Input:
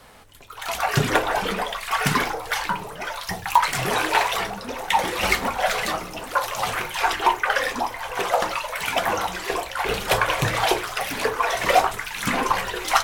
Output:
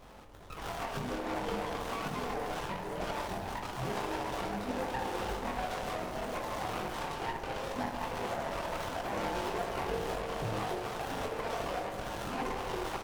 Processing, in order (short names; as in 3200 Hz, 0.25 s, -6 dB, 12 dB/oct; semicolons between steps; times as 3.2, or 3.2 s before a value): compressor 5:1, threshold -28 dBFS, peak gain reduction 15 dB; limiter -22 dBFS, peak gain reduction 11 dB; chorus voices 4, 0.39 Hz, delay 22 ms, depth 2.9 ms; doubler 44 ms -11 dB; band-limited delay 70 ms, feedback 84%, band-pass 470 Hz, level -6 dB; running maximum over 17 samples